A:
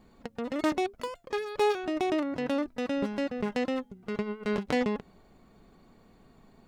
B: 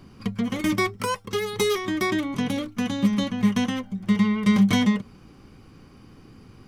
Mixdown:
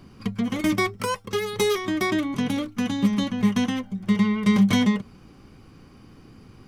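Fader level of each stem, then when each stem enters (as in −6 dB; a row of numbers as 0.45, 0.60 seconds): −9.5, 0.0 decibels; 0.00, 0.00 seconds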